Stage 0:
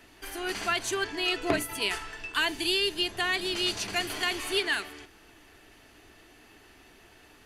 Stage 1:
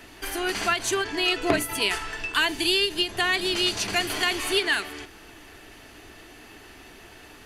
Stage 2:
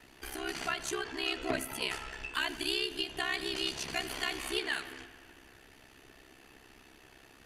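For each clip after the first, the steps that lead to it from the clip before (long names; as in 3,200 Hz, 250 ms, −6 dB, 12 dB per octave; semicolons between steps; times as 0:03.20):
in parallel at −0.5 dB: downward compressor, threshold −36 dBFS, peak gain reduction 14 dB; on the sum: every ending faded ahead of time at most 220 dB per second; level +2.5 dB
ring modulation 33 Hz; bucket-brigade delay 85 ms, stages 2,048, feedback 75%, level −17 dB; level −7.5 dB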